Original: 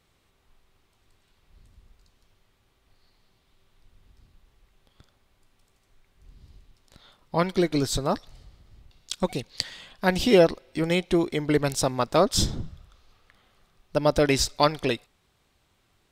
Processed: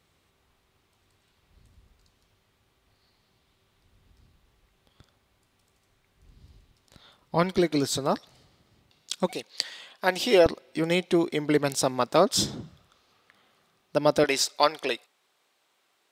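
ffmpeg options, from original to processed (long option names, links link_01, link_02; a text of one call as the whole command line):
ffmpeg -i in.wav -af "asetnsamples=nb_out_samples=441:pad=0,asendcmd='7.58 highpass f 160;9.31 highpass f 370;10.46 highpass f 170;14.24 highpass f 440',highpass=54" out.wav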